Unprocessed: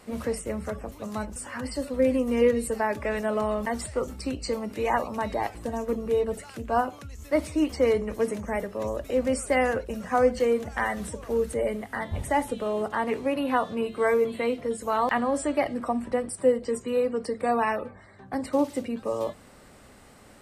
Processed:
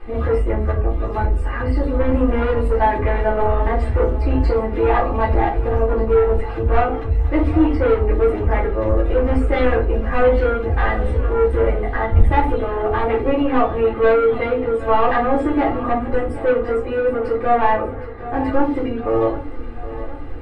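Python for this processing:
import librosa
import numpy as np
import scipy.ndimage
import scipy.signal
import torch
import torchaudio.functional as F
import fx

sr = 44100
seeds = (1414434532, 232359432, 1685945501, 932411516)

p1 = fx.low_shelf(x, sr, hz=74.0, db=11.0)
p2 = p1 + 0.76 * np.pad(p1, (int(2.5 * sr / 1000.0), 0))[:len(p1)]
p3 = 10.0 ** (-22.0 / 20.0) * np.tanh(p2 / 10.0 ** (-22.0 / 20.0))
p4 = fx.air_absorb(p3, sr, metres=490.0)
p5 = p4 + fx.echo_feedback(p4, sr, ms=766, feedback_pct=59, wet_db=-15.0, dry=0)
p6 = fx.room_shoebox(p5, sr, seeds[0], volume_m3=120.0, walls='furnished', distance_m=2.6)
y = p6 * librosa.db_to_amplitude(5.0)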